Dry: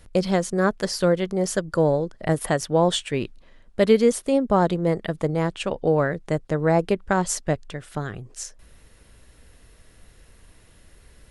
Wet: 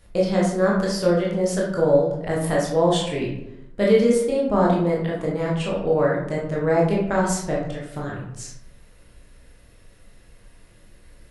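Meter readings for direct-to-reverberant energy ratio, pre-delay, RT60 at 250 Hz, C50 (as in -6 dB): -4.5 dB, 16 ms, 1.0 s, 2.5 dB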